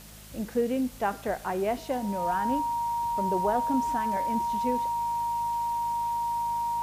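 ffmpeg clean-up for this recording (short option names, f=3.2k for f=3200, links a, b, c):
-af "adeclick=t=4,bandreject=f=52.7:t=h:w=4,bandreject=f=105.4:t=h:w=4,bandreject=f=158.1:t=h:w=4,bandreject=f=210.8:t=h:w=4,bandreject=f=940:w=30,afwtdn=0.0035"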